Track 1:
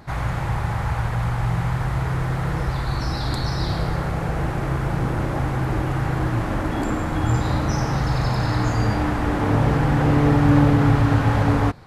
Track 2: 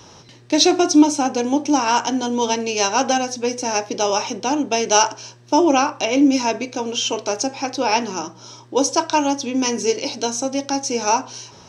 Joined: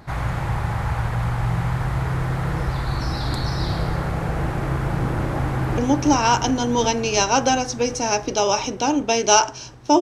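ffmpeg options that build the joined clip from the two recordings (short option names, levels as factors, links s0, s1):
-filter_complex "[0:a]apad=whole_dur=10.01,atrim=end=10.01,atrim=end=5.782[s0];[1:a]atrim=start=1.408:end=5.64[s1];[s0][s1]acrossfade=d=0.004:c1=hsin:c2=hsin,asplit=2[s2][s3];[s3]afade=t=in:st=5.39:d=0.01,afade=t=out:st=5.78:d=0.01,aecho=0:1:360|720|1080|1440|1800|2160|2520|2880|3240|3600|3960|4320:0.630957|0.504766|0.403813|0.32305|0.25844|0.206752|0.165402|0.132321|0.105857|0.0846857|0.0677485|0.0541988[s4];[s2][s4]amix=inputs=2:normalize=0"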